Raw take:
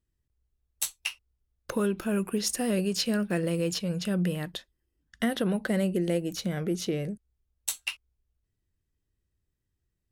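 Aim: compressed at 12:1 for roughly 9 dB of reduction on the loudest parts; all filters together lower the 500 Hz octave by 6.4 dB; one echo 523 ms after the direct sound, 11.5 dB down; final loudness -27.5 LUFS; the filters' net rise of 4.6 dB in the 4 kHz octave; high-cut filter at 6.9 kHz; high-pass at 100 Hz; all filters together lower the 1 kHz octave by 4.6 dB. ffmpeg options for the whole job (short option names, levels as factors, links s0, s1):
-af "highpass=100,lowpass=6900,equalizer=f=500:t=o:g=-7.5,equalizer=f=1000:t=o:g=-4,equalizer=f=4000:t=o:g=7,acompressor=threshold=0.0316:ratio=12,aecho=1:1:523:0.266,volume=2.37"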